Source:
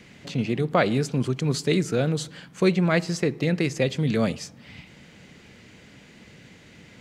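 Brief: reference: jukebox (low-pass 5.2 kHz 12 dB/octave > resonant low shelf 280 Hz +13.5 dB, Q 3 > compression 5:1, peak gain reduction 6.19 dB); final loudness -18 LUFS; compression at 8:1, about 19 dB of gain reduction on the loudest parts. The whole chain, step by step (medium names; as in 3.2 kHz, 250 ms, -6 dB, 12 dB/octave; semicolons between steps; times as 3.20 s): compression 8:1, threshold -36 dBFS; low-pass 5.2 kHz 12 dB/octave; resonant low shelf 280 Hz +13.5 dB, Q 3; compression 5:1, threshold -21 dBFS; trim +10.5 dB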